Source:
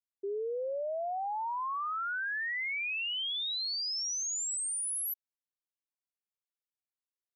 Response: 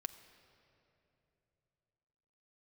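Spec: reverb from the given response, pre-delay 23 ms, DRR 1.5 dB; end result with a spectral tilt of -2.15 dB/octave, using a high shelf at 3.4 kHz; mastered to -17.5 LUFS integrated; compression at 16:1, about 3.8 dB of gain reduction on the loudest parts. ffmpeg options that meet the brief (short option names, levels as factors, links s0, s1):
-filter_complex "[0:a]highshelf=f=3400:g=-7.5,acompressor=threshold=0.0141:ratio=16,asplit=2[s0][s1];[1:a]atrim=start_sample=2205,adelay=23[s2];[s1][s2]afir=irnorm=-1:irlink=0,volume=1.12[s3];[s0][s3]amix=inputs=2:normalize=0,volume=8.41"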